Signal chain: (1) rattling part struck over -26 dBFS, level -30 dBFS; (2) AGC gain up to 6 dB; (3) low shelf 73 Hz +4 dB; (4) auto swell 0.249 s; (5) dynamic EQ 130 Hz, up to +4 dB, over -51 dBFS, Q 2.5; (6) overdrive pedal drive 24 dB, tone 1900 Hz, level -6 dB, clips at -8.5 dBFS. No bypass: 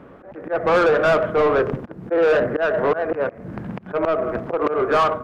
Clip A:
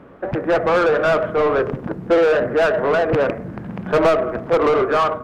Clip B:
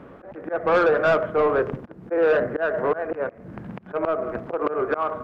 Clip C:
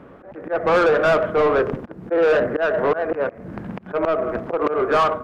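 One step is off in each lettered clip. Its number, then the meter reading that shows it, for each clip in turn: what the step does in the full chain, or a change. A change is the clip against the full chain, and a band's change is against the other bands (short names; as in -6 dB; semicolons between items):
4, momentary loudness spread change -3 LU; 2, 125 Hz band -2.0 dB; 5, 125 Hz band -1.5 dB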